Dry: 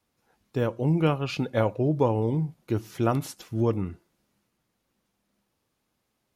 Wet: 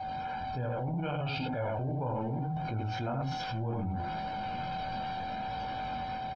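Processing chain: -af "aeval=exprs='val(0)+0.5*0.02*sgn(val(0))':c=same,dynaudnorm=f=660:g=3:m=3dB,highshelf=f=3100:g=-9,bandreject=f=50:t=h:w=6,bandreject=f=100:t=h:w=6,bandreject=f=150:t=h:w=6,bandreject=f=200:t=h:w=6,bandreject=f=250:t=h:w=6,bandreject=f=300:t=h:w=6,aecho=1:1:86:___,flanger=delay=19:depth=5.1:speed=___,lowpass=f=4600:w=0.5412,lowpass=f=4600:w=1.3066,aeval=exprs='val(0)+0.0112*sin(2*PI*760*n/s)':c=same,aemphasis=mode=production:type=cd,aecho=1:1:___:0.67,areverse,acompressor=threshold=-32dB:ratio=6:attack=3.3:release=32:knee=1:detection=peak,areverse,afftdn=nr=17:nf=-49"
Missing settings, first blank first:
0.668, 0.71, 1.3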